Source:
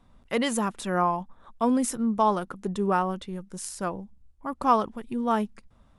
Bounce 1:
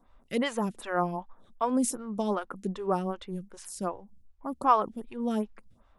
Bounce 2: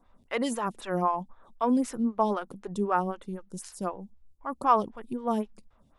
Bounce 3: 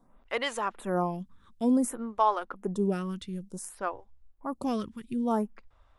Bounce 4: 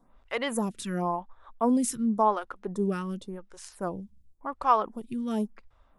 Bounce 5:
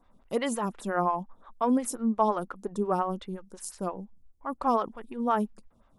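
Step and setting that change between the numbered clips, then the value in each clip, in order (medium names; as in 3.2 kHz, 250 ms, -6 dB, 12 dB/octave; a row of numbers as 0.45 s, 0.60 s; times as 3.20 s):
lamp-driven phase shifter, rate: 2.6 Hz, 3.9 Hz, 0.56 Hz, 0.92 Hz, 5.7 Hz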